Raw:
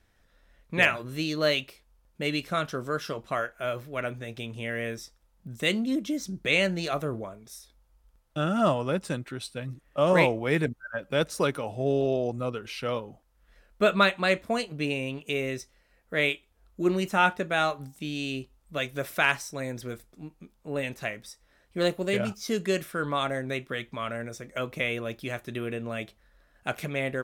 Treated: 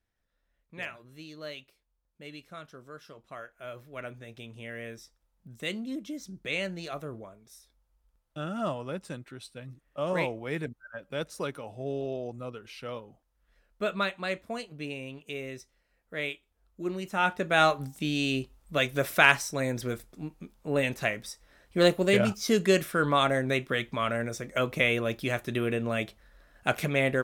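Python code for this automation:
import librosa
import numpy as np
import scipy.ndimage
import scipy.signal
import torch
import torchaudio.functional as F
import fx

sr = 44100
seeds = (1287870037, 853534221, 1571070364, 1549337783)

y = fx.gain(x, sr, db=fx.line((3.11, -16.0), (3.98, -8.0), (17.03, -8.0), (17.63, 4.0)))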